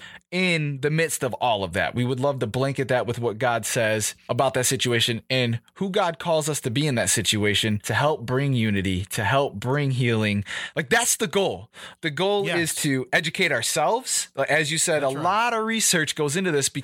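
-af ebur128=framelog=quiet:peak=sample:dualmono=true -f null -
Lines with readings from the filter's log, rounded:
Integrated loudness:
  I:         -19.7 LUFS
  Threshold: -29.8 LUFS
Loudness range:
  LRA:         2.2 LU
  Threshold: -39.8 LUFS
  LRA low:   -20.8 LUFS
  LRA high:  -18.7 LUFS
Sample peak:
  Peak:       -7.2 dBFS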